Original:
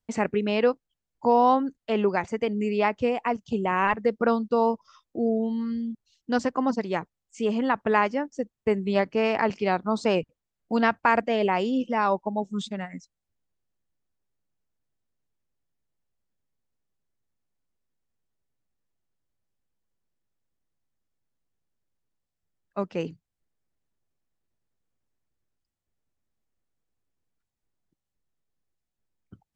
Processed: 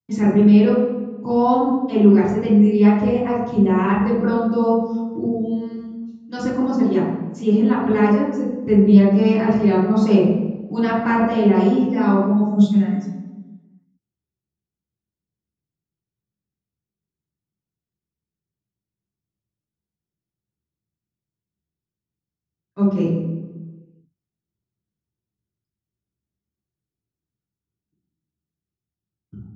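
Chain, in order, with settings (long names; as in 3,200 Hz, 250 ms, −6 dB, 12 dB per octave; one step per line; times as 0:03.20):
noise gate −56 dBFS, range −10 dB
0:05.25–0:06.39: low-shelf EQ 400 Hz −12 dB
convolution reverb RT60 1.3 s, pre-delay 3 ms, DRR −12 dB
level −12 dB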